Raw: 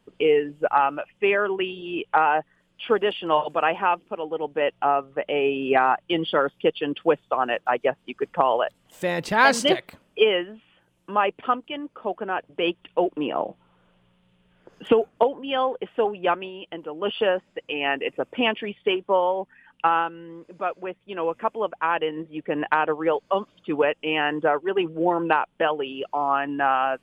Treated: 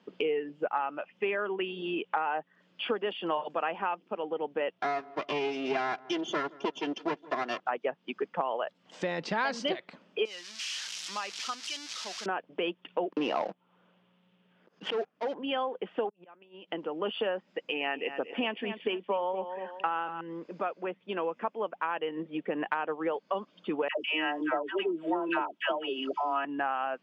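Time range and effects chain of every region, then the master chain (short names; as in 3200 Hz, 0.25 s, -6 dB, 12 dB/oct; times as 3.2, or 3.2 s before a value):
4.78–7.6 minimum comb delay 2.9 ms + darkening echo 0.164 s, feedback 49%, low-pass 940 Hz, level -23 dB
10.25–12.26 switching spikes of -14.5 dBFS + passive tone stack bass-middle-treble 5-5-5
13.12–15.34 dynamic EQ 260 Hz, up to -6 dB, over -33 dBFS, Q 0.76 + sample leveller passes 3 + auto swell 0.184 s
16.09–16.7 flipped gate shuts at -24 dBFS, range -28 dB + compressor 12:1, threshold -47 dBFS
17.48–20.21 high shelf 8800 Hz +9.5 dB + feedback echo 0.234 s, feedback 29%, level -14 dB
23.88–26.45 high shelf 4000 Hz +10 dB + comb 3.1 ms, depth 61% + dispersion lows, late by 0.118 s, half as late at 710 Hz
whole clip: Chebyshev band-pass 180–5500 Hz, order 3; compressor 3:1, threshold -35 dBFS; gain +3 dB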